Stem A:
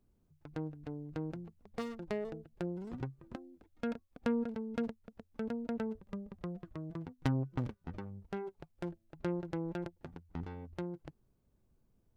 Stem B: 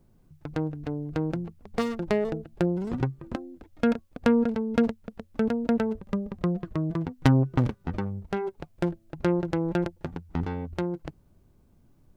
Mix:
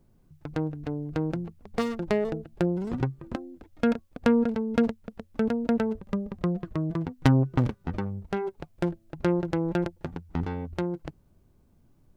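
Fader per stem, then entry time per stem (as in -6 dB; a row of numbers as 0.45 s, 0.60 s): -6.0 dB, -1.5 dB; 0.00 s, 0.00 s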